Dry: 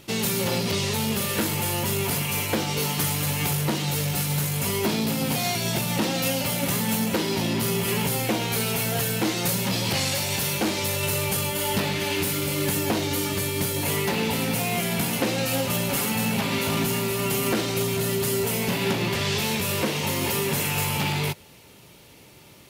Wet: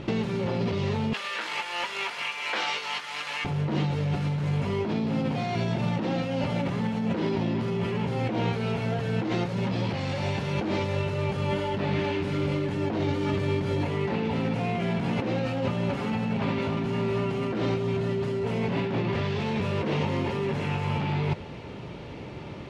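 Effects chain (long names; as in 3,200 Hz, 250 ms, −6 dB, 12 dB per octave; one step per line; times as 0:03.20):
0:01.13–0:03.45: high-pass filter 1,400 Hz 12 dB per octave
compressor whose output falls as the input rises −32 dBFS, ratio −1
head-to-tape spacing loss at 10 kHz 36 dB
level +8 dB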